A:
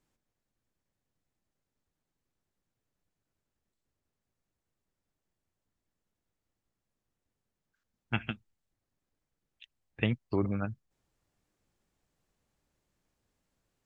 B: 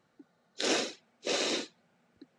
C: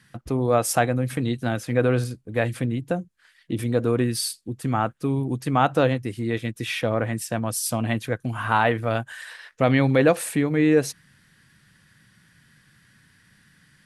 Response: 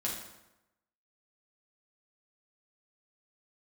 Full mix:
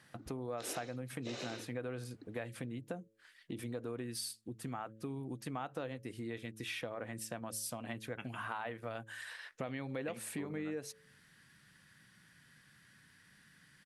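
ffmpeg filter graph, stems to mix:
-filter_complex "[0:a]highpass=140,adelay=50,volume=-6.5dB[a];[1:a]acompressor=threshold=-35dB:ratio=2,volume=1.5dB[b];[2:a]highshelf=f=4.5k:g=6,volume=-5dB[c];[b][c]amix=inputs=2:normalize=0,highshelf=f=4.6k:g=-6.5,acompressor=threshold=-27dB:ratio=3,volume=0dB[d];[a][d]amix=inputs=2:normalize=0,lowshelf=f=150:g=-7.5,bandreject=f=109.8:t=h:w=4,bandreject=f=219.6:t=h:w=4,bandreject=f=329.4:t=h:w=4,bandreject=f=439.2:t=h:w=4,bandreject=f=549:t=h:w=4,acompressor=threshold=-45dB:ratio=2"

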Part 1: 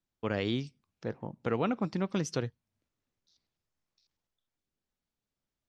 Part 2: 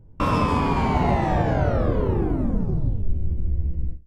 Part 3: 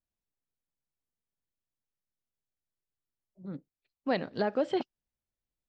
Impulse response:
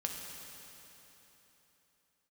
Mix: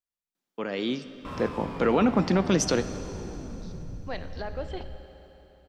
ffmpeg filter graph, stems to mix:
-filter_complex "[0:a]highpass=f=190:w=0.5412,highpass=f=190:w=1.3066,alimiter=level_in=2dB:limit=-24dB:level=0:latency=1:release=10,volume=-2dB,dynaudnorm=f=260:g=7:m=9dB,adelay=350,volume=1dB,asplit=2[a][b];[b]volume=-7.5dB[c];[1:a]asoftclip=type=hard:threshold=-19dB,adelay=1050,volume=-18dB,asplit=2[d][e];[e]volume=-5.5dB[f];[2:a]lowshelf=f=410:g=-10.5,acontrast=81,volume=-14.5dB,asplit=2[g][h];[h]volume=-3dB[i];[3:a]atrim=start_sample=2205[j];[c][f][i]amix=inputs=3:normalize=0[k];[k][j]afir=irnorm=-1:irlink=0[l];[a][d][g][l]amix=inputs=4:normalize=0"

